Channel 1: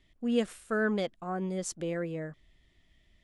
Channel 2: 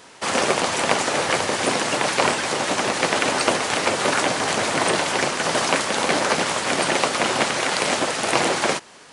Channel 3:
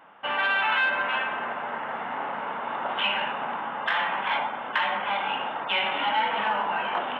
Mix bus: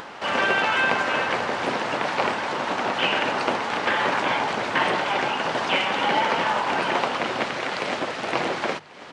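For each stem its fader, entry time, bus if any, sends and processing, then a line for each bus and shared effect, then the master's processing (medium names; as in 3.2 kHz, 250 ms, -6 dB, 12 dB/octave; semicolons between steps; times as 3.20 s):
mute
-4.5 dB, 0.00 s, no send, echo send -23 dB, low-pass 3.5 kHz 12 dB/octave; hum notches 50/100/150 Hz
+1.0 dB, 0.00 s, no send, no echo send, none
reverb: none
echo: delay 1091 ms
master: upward compressor, threshold -29 dBFS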